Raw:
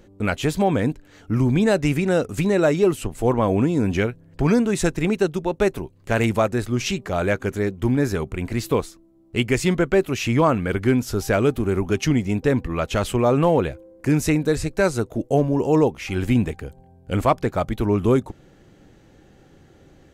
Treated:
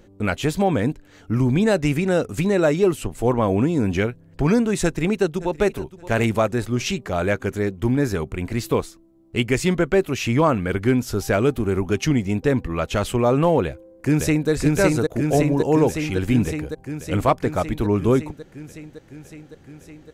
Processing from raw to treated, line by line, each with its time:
0:04.83–0:05.78: delay throw 570 ms, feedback 25%, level −17.5 dB
0:13.64–0:14.50: delay throw 560 ms, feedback 75%, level −1.5 dB

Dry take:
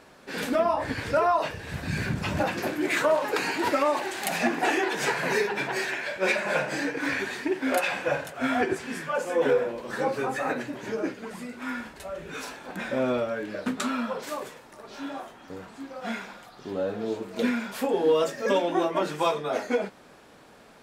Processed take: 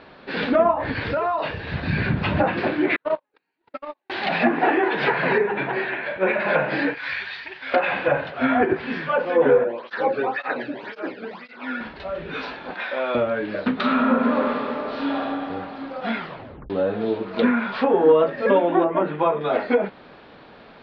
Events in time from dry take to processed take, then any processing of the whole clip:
0:00.71–0:01.61: downward compressor 3 to 1, threshold −28 dBFS
0:02.96–0:04.10: noise gate −20 dBFS, range −57 dB
0:05.38–0:06.40: high-frequency loss of the air 380 metres
0:06.94–0:07.74: guitar amp tone stack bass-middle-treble 10-0-10
0:09.64–0:11.81: through-zero flanger with one copy inverted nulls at 1.9 Hz, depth 1.1 ms
0:12.74–0:13.15: high-pass filter 680 Hz
0:13.75–0:15.22: thrown reverb, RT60 2.8 s, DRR −3 dB
0:16.17: tape stop 0.53 s
0:17.26–0:18.12: parametric band 1,200 Hz +6.5 dB 0.82 octaves
0:18.84–0:19.41: high-frequency loss of the air 460 metres
whole clip: treble cut that deepens with the level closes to 1,700 Hz, closed at −21 dBFS; Butterworth low-pass 4,400 Hz 48 dB per octave; level +6.5 dB

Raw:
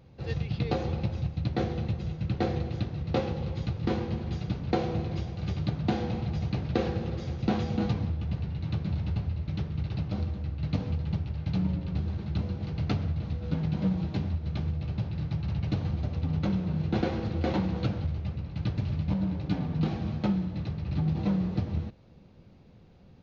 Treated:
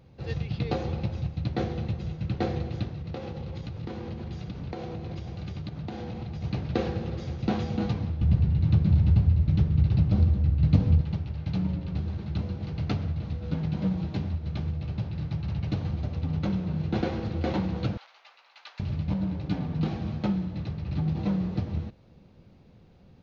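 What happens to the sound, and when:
0:02.93–0:06.44: downward compressor 12 to 1, threshold −31 dBFS
0:08.21–0:11.01: low-shelf EQ 260 Hz +11.5 dB
0:17.97–0:18.80: high-pass filter 890 Hz 24 dB per octave

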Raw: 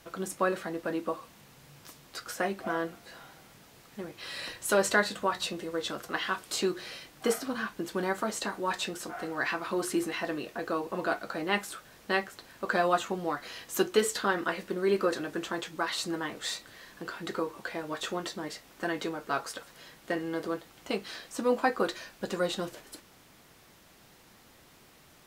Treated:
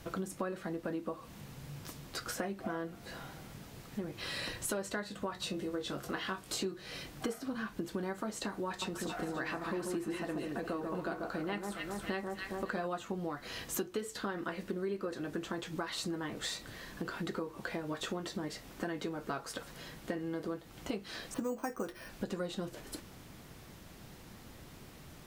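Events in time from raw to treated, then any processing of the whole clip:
0:05.40–0:07.02: double-tracking delay 21 ms −6 dB
0:08.68–0:12.87: delay that swaps between a low-pass and a high-pass 137 ms, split 1,300 Hz, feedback 63%, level −4.5 dB
0:21.34–0:22.09: bad sample-rate conversion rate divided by 6×, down filtered, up hold
whole clip: low-shelf EQ 290 Hz +11.5 dB; downward compressor 6 to 1, threshold −36 dBFS; level +1 dB

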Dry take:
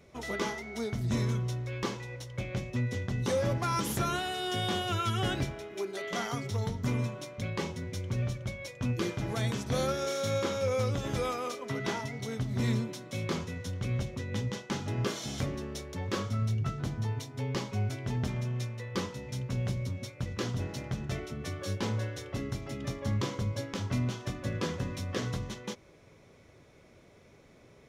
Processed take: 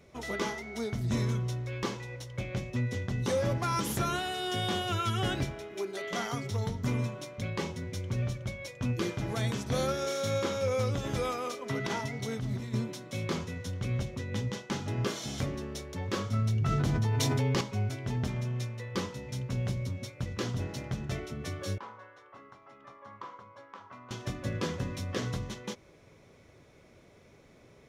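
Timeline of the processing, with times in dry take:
0:11.66–0:12.74: compressor whose output falls as the input rises −32 dBFS, ratio −0.5
0:16.33–0:17.61: envelope flattener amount 100%
0:21.78–0:24.11: resonant band-pass 1,100 Hz, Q 3

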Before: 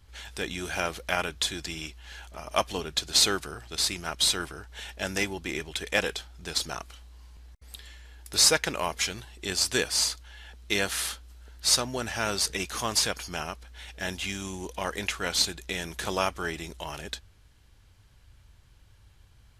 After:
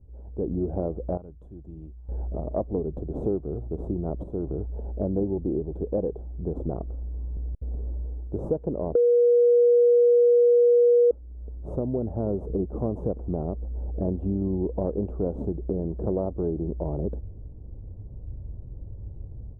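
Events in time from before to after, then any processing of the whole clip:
0:01.17–0:02.09: guitar amp tone stack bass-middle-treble 5-5-5
0:04.23–0:04.84: downward compressor 2.5 to 1, threshold −36 dBFS
0:08.95–0:11.11: beep over 480 Hz −14.5 dBFS
whole clip: automatic gain control gain up to 13.5 dB; inverse Chebyshev low-pass filter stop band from 1,800 Hz, stop band 60 dB; downward compressor 2.5 to 1, threshold −31 dBFS; level +5.5 dB

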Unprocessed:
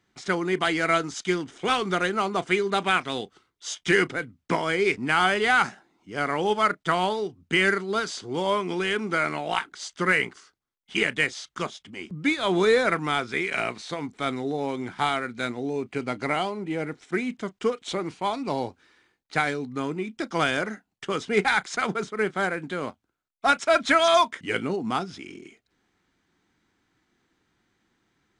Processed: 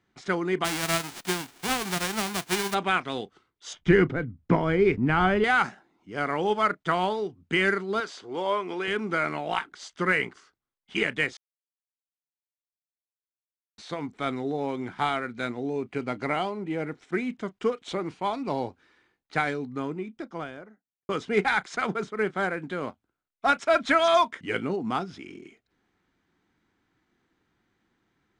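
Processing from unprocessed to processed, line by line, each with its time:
0:00.64–0:02.73: spectral envelope flattened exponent 0.1
0:03.73–0:05.44: RIAA equalisation playback
0:08.00–0:08.88: bass and treble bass −13 dB, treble −4 dB
0:11.37–0:13.78: silence
0:19.49–0:21.09: fade out and dull
whole clip: high-shelf EQ 4,200 Hz −9 dB; level −1 dB

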